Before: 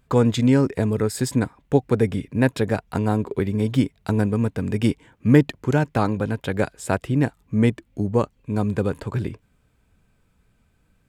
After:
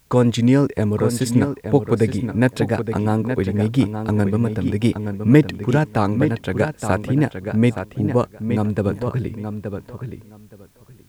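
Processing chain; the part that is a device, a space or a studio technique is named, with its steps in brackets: plain cassette with noise reduction switched in (tape noise reduction on one side only decoder only; wow and flutter; white noise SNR 41 dB); filtered feedback delay 871 ms, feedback 16%, low-pass 4.3 kHz, level -7.5 dB; trim +2 dB

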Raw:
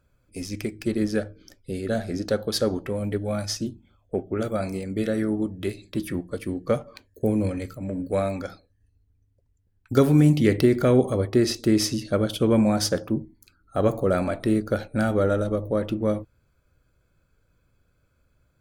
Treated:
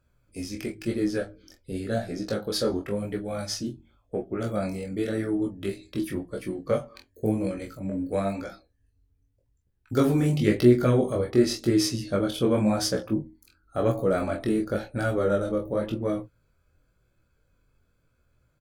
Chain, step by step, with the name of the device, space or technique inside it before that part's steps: double-tracked vocal (doubling 25 ms -6 dB; chorus 0.93 Hz, delay 16 ms, depth 6.7 ms)

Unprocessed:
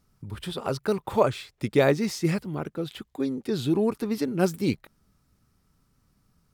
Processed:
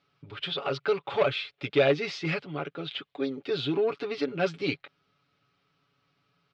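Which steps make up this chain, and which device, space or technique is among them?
overdrive pedal into a guitar cabinet (overdrive pedal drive 18 dB, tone 7.2 kHz, clips at -6 dBFS; cabinet simulation 84–3400 Hz, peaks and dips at 240 Hz -7 dB, 960 Hz -8 dB, 1.8 kHz -6 dB); treble shelf 2.5 kHz +9 dB; comb 7.1 ms, depth 69%; trim -9 dB

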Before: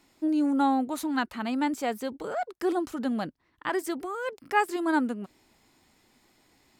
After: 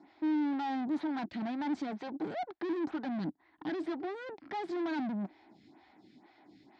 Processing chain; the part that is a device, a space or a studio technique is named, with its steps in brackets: vibe pedal into a guitar amplifier (lamp-driven phase shifter 2.1 Hz; valve stage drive 44 dB, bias 0.5; cabinet simulation 110–4100 Hz, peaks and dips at 190 Hz +5 dB, 310 Hz +9 dB, 490 Hz -8 dB, 770 Hz +6 dB, 1.2 kHz -6 dB, 2.8 kHz -7 dB); trim +7.5 dB

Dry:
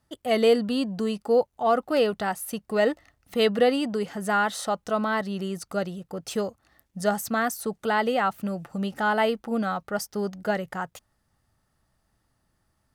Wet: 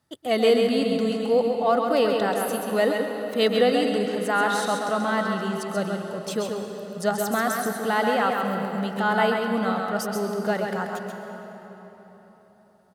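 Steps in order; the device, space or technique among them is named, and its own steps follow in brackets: PA in a hall (high-pass 100 Hz; peaking EQ 3.8 kHz +4 dB 0.21 oct; delay 134 ms -5 dB; reverberation RT60 4.0 s, pre-delay 114 ms, DRR 5.5 dB)

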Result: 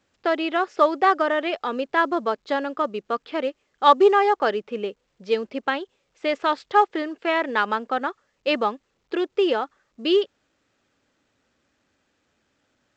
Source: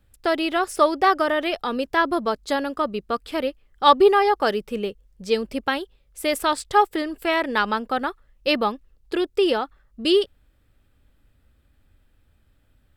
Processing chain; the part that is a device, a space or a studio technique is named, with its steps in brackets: telephone (band-pass 260–3100 Hz; A-law 128 kbps 16 kHz)

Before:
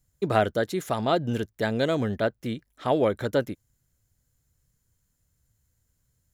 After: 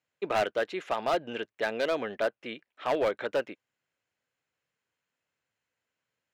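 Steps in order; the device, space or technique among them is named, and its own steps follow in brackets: megaphone (band-pass 480–2900 Hz; peaking EQ 2.6 kHz +8.5 dB 0.5 oct; hard clipper -21 dBFS, distortion -11 dB)

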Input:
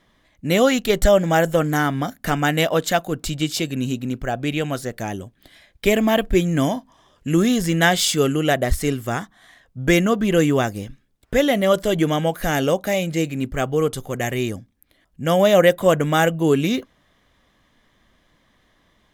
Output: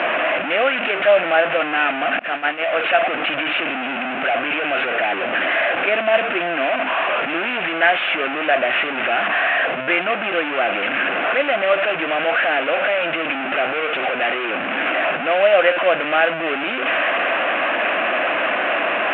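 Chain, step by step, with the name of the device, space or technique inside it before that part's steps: level-controlled noise filter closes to 1.1 kHz, open at -17 dBFS; digital answering machine (band-pass 320–3200 Hz; one-bit delta coder 16 kbps, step -14 dBFS; cabinet simulation 430–3400 Hz, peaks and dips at 430 Hz -6 dB, 670 Hz +6 dB, 950 Hz -6 dB, 1.5 kHz +5 dB, 2.6 kHz +8 dB); 2.19–2.73 s: expander -13 dBFS

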